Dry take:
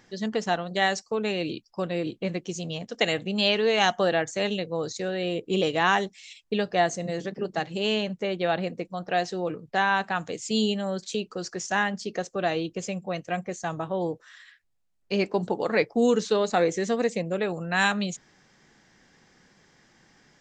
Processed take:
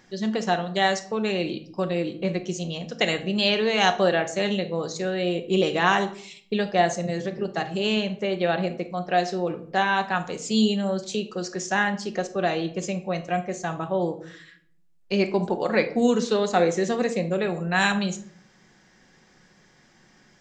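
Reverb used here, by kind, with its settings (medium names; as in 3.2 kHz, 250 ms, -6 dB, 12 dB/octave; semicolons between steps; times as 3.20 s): simulated room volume 860 m³, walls furnished, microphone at 1 m; trim +1 dB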